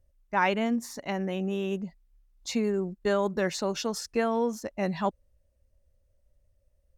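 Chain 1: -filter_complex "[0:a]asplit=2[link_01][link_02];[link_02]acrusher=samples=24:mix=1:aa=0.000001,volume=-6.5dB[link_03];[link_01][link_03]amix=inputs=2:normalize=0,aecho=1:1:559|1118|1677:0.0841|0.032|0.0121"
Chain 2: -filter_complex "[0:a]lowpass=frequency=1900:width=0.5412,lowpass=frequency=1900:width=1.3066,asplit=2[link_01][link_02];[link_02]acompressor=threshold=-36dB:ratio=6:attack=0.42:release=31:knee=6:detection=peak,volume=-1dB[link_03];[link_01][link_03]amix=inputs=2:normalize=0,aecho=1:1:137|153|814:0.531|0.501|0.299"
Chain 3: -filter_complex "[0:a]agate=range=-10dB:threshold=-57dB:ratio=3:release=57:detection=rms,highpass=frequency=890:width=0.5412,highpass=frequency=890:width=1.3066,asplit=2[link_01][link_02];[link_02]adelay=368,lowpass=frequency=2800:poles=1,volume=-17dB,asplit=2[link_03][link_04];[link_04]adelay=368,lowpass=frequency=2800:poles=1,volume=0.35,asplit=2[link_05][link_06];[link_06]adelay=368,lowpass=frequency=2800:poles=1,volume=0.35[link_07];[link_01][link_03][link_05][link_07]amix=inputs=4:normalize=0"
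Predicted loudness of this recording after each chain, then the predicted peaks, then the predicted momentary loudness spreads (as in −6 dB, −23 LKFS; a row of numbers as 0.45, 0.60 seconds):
−27.0, −26.5, −36.0 LKFS; −8.5, −11.5, −14.0 dBFS; 6, 14, 16 LU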